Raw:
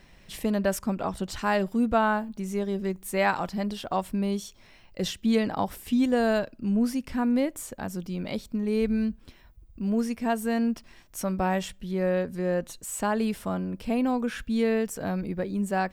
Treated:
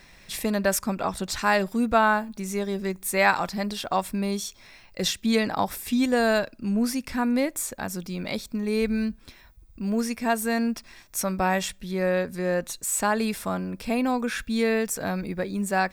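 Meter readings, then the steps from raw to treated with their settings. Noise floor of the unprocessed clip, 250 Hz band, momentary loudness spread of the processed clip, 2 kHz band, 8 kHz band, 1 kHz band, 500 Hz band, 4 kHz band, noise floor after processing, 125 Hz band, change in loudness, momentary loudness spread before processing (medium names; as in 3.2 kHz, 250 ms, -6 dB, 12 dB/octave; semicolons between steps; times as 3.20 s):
-55 dBFS, 0.0 dB, 9 LU, +6.0 dB, +8.5 dB, +3.5 dB, +1.5 dB, +6.5 dB, -53 dBFS, 0.0 dB, +2.0 dB, 8 LU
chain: tilt shelf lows -4.5 dB; band-stop 3 kHz, Q 7.5; trim +4 dB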